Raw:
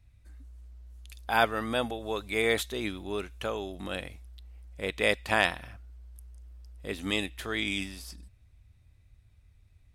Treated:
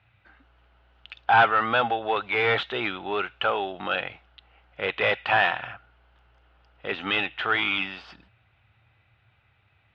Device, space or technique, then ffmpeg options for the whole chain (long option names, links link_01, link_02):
overdrive pedal into a guitar cabinet: -filter_complex "[0:a]asplit=2[link_01][link_02];[link_02]highpass=frequency=720:poles=1,volume=23dB,asoftclip=type=tanh:threshold=-7.5dB[link_03];[link_01][link_03]amix=inputs=2:normalize=0,lowpass=frequency=3100:poles=1,volume=-6dB,highpass=81,equalizer=frequency=120:width_type=q:width=4:gain=9,equalizer=frequency=270:width_type=q:width=4:gain=-4,equalizer=frequency=810:width_type=q:width=4:gain=8,equalizer=frequency=1400:width_type=q:width=4:gain=9,equalizer=frequency=2900:width_type=q:width=4:gain=7,lowpass=frequency=3500:width=0.5412,lowpass=frequency=3500:width=1.3066,volume=-6dB"